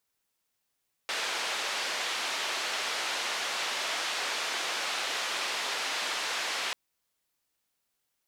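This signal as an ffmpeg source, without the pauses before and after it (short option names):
-f lavfi -i "anoisesrc=c=white:d=5.64:r=44100:seed=1,highpass=f=520,lowpass=f=4100,volume=-20.1dB"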